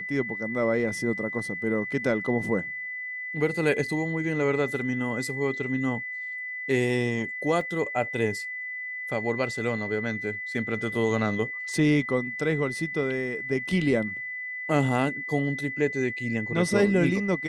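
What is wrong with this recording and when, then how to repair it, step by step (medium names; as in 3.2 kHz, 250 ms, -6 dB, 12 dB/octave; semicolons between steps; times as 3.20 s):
whine 2 kHz -32 dBFS
7.61 s: dropout 2.3 ms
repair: band-stop 2 kHz, Q 30; interpolate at 7.61 s, 2.3 ms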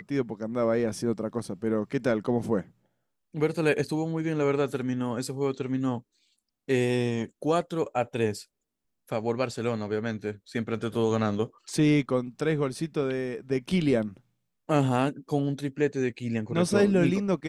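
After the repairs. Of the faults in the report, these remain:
nothing left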